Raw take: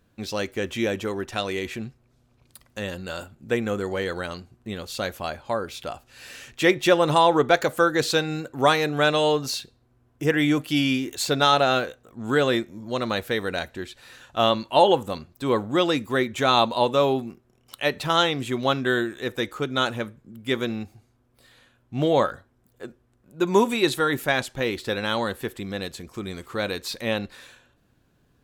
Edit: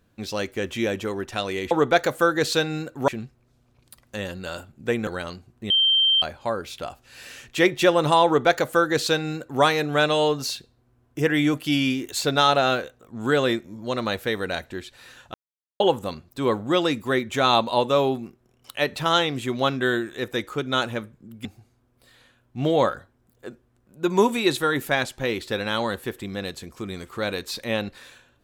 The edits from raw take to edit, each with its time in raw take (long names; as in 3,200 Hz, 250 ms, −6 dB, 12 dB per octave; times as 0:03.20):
0:03.70–0:04.11: remove
0:04.74–0:05.26: beep over 3,140 Hz −15.5 dBFS
0:07.29–0:08.66: duplicate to 0:01.71
0:14.38–0:14.84: silence
0:20.49–0:20.82: remove